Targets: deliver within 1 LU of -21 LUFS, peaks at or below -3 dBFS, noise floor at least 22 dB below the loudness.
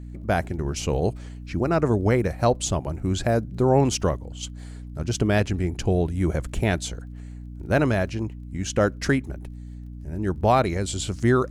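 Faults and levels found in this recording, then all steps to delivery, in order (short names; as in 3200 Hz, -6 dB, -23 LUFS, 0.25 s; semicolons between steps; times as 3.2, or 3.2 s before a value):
ticks 25/s; hum 60 Hz; harmonics up to 300 Hz; hum level -35 dBFS; loudness -24.0 LUFS; peak -7.0 dBFS; loudness target -21.0 LUFS
-> de-click; notches 60/120/180/240/300 Hz; gain +3 dB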